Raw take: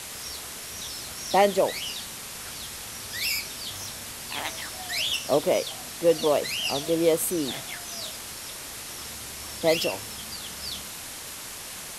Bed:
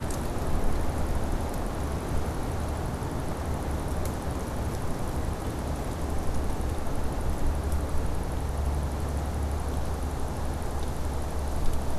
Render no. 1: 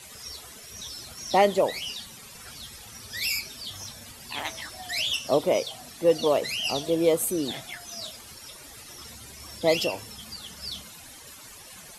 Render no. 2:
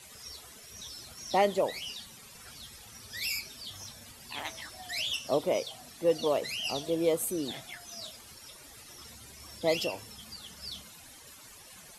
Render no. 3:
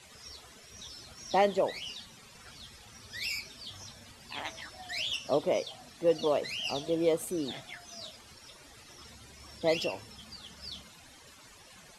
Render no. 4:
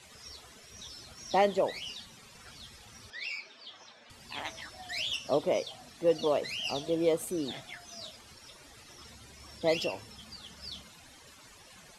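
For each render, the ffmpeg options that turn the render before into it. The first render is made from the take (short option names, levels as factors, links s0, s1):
-af "afftdn=nr=13:nf=-39"
-af "volume=0.531"
-af "adynamicsmooth=sensitivity=1.5:basefreq=7900"
-filter_complex "[0:a]asettb=1/sr,asplit=3[s0][s1][s2];[s0]atrim=end=3.104[s3];[s1]atrim=start=3.1:end=4.1,asetpts=PTS-STARTPTS,afade=t=in:d=0.004:c=qsin,afade=t=out:st=0.996:d=0.004:c=qsin,highpass=390,lowpass=3500[s4];[s2]atrim=start=4.096[s5];[s3][s4]acrossfade=d=0.004:c1=hsin:c2=qsin[s6];[s6][s5]acrossfade=d=0.004:c1=qsin:c2=hsin"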